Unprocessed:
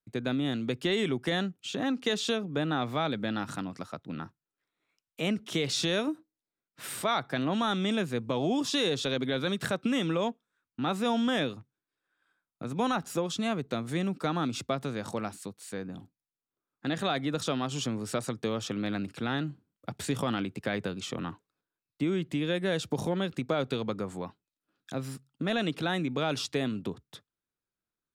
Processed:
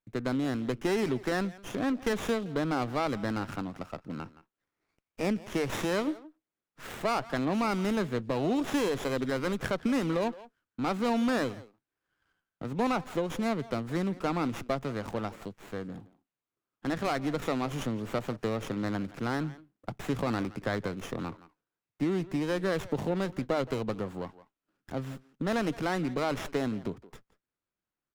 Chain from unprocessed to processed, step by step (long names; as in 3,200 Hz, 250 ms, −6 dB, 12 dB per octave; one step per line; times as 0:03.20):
far-end echo of a speakerphone 170 ms, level −16 dB
windowed peak hold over 9 samples